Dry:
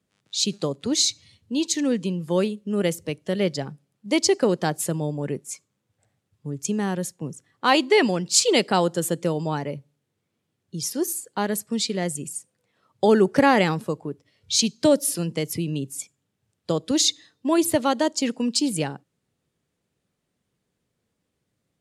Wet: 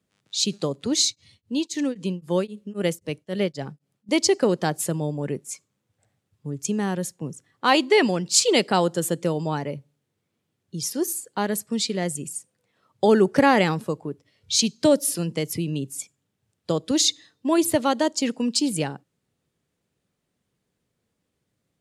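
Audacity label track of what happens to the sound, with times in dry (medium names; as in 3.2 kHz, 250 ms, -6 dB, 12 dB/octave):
1.030000	4.090000	tremolo of two beating tones nulls at 3.8 Hz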